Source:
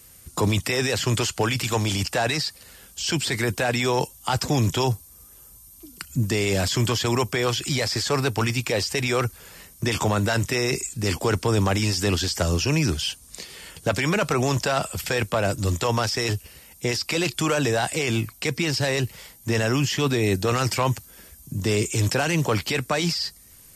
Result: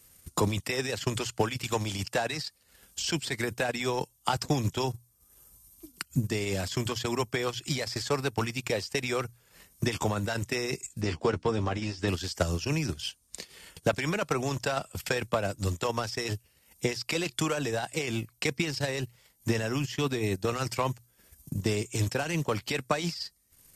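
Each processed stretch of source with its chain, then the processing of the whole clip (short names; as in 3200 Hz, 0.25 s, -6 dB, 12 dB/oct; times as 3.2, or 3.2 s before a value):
11.01–12.08 air absorption 110 m + notches 60/120/180/240/300 Hz + doubler 13 ms -7 dB
whole clip: notches 60/120 Hz; transient shaper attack +8 dB, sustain -11 dB; gain -8.5 dB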